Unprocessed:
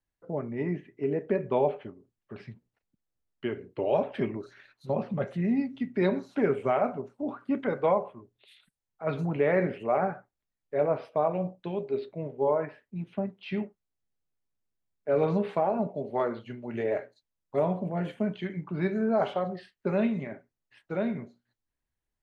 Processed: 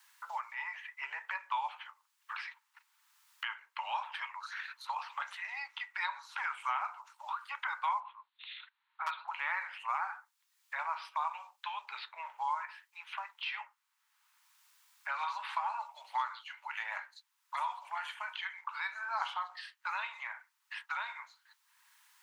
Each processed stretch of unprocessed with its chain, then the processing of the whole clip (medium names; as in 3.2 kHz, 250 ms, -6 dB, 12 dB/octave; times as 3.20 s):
8.00–9.28 s: elliptic low-pass 4 kHz + hard clipper -23 dBFS
whole clip: Chebyshev high-pass 900 Hz, order 6; dynamic bell 2 kHz, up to -6 dB, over -53 dBFS, Q 1; three bands compressed up and down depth 70%; trim +8 dB